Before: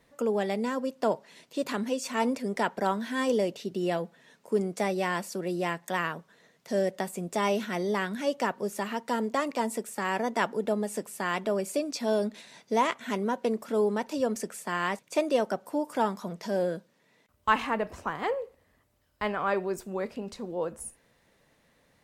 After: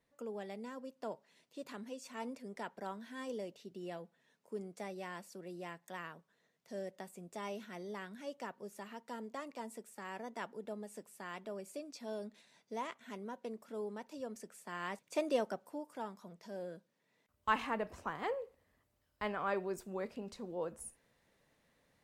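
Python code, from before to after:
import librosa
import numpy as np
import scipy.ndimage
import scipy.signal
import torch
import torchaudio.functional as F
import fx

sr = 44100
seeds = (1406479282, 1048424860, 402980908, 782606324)

y = fx.gain(x, sr, db=fx.line((14.46, -16.0), (15.33, -7.0), (15.92, -16.5), (16.61, -16.5), (17.54, -8.0)))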